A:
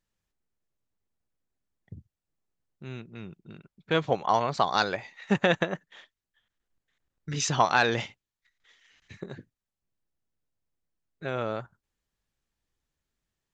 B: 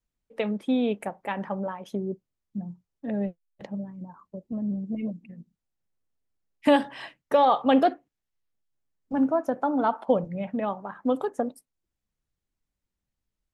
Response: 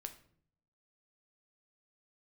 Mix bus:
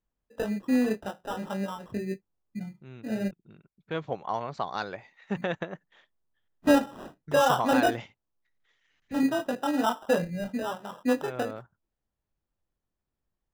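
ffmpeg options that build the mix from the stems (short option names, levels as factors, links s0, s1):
-filter_complex "[0:a]highshelf=f=2900:g=-8.5,volume=0.473[s0];[1:a]flanger=delay=20:depth=4:speed=1.8,acrusher=samples=20:mix=1:aa=0.000001,highshelf=f=2300:g=-10.5,volume=1.19,asplit=3[s1][s2][s3];[s1]atrim=end=3.31,asetpts=PTS-STARTPTS,afade=t=out:st=3.306:d=0.004:c=hsin[s4];[s2]atrim=start=3.31:end=5.36,asetpts=PTS-STARTPTS,volume=0[s5];[s3]atrim=start=5.36,asetpts=PTS-STARTPTS,afade=t=in:d=0.004:c=hsin[s6];[s4][s5][s6]concat=n=3:v=0:a=1[s7];[s0][s7]amix=inputs=2:normalize=0"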